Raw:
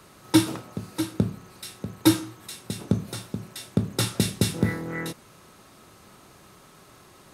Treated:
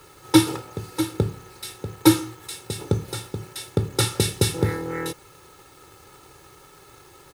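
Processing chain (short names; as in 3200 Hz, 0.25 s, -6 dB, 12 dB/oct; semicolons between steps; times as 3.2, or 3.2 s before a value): comb 2.3 ms, depth 76%; in parallel at -12 dB: bit-crush 7-bit; on the sum: added noise violet -62 dBFS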